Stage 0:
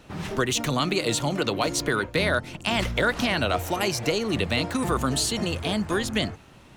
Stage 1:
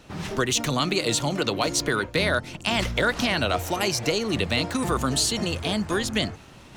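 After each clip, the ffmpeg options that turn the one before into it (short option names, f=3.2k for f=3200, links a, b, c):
-af "areverse,acompressor=mode=upward:threshold=-41dB:ratio=2.5,areverse,equalizer=f=5.5k:w=1:g=3.5"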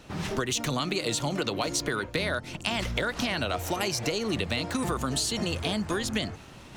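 -af "acompressor=threshold=-25dB:ratio=6"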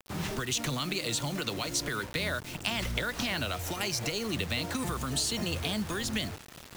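-filter_complex "[0:a]acrossover=split=200|1300|3600[a][b][c][d];[b]alimiter=level_in=5dB:limit=-24dB:level=0:latency=1:release=186,volume=-5dB[e];[a][e][c][d]amix=inputs=4:normalize=0,acrusher=bits=6:mix=0:aa=0.000001,volume=-1.5dB"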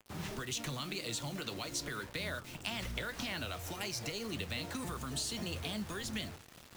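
-af "flanger=delay=8.5:depth=7.4:regen=-70:speed=1.8:shape=triangular,volume=-3dB"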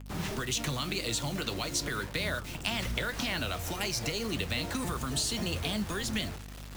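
-af "aeval=exprs='val(0)+0.00316*(sin(2*PI*50*n/s)+sin(2*PI*2*50*n/s)/2+sin(2*PI*3*50*n/s)/3+sin(2*PI*4*50*n/s)/4+sin(2*PI*5*50*n/s)/5)':c=same,volume=6.5dB"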